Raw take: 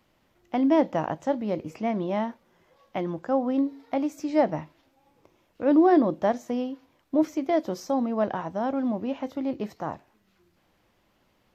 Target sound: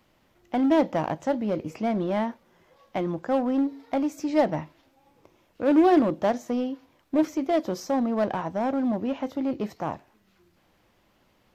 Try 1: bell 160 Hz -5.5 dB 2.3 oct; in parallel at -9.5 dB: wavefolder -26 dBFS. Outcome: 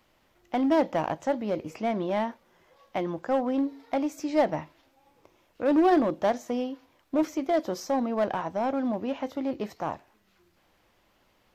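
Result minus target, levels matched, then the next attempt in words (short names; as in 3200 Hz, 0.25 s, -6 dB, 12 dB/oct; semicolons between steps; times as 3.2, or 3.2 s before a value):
125 Hz band -2.5 dB
in parallel at -9.5 dB: wavefolder -26 dBFS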